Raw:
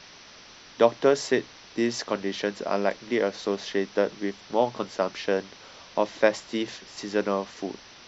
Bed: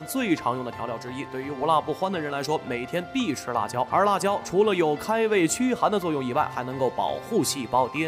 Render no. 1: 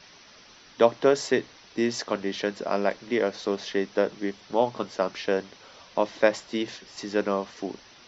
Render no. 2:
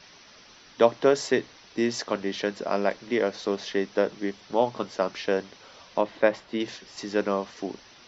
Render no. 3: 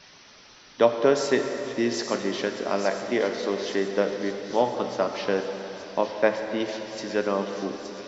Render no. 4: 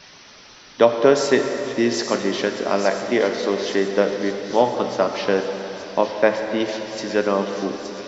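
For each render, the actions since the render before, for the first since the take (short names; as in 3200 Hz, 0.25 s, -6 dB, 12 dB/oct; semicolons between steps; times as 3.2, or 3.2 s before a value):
denoiser 6 dB, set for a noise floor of -49 dBFS
6.01–6.6 air absorption 180 m
thin delay 0.869 s, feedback 52%, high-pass 4100 Hz, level -6 dB; plate-style reverb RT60 3.8 s, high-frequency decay 0.85×, pre-delay 0 ms, DRR 5 dB
gain +5.5 dB; limiter -2 dBFS, peak gain reduction 2 dB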